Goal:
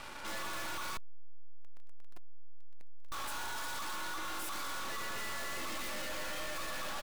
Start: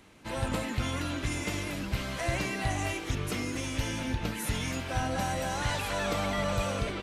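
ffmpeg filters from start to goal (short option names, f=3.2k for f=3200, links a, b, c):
-filter_complex "[0:a]aeval=exprs='val(0)*sin(2*PI*1200*n/s)':c=same,aecho=1:1:3.5:0.42,asplit=2[a][b];[b]adelay=122,lowpass=f=3.9k:p=1,volume=-5dB,asplit=2[c][d];[d]adelay=122,lowpass=f=3.9k:p=1,volume=0.2,asplit=2[e][f];[f]adelay=122,lowpass=f=3.9k:p=1,volume=0.2[g];[a][c][e][g]amix=inputs=4:normalize=0,aeval=exprs='max(val(0),0)':c=same,asettb=1/sr,asplit=3[h][i][j];[h]atrim=end=0.974[k];[i]atrim=start=0.97:end=3.12,asetpts=PTS-STARTPTS,afade=t=in:d=0.004:c=qsin,afade=t=out:st=2.146:d=0.004:c=qsin,lowshelf=f=330:g=9.5[l];[j]atrim=start=3.116[m];[k][l]acrossfade=d=0.004:c1=hsin:c2=qsin[n];[n][m]acrossfade=d=0.004:c1=qsin:c2=hsin,aeval=exprs='clip(val(0),-1,0.00316)':c=same,volume=15.5dB"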